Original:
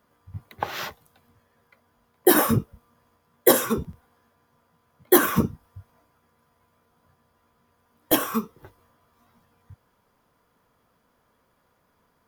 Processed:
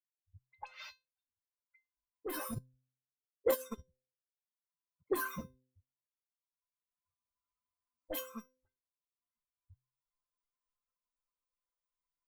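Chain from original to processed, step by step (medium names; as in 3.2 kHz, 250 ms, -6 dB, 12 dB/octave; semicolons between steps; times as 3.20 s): expander on every frequency bin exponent 2; recorder AGC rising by 15 dB/s; de-hum 128.6 Hz, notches 4; saturation -18 dBFS, distortion -7 dB; feedback comb 520 Hz, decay 0.21 s, harmonics all, mix 90%; phase dispersion highs, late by 44 ms, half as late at 2.1 kHz; 2.52–5.15 s: transient shaper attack +11 dB, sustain -10 dB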